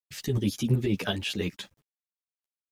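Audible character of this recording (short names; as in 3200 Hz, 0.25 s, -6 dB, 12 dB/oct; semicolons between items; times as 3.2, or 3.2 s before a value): tremolo saw up 8.1 Hz, depth 50%; a quantiser's noise floor 12-bit, dither none; a shimmering, thickened sound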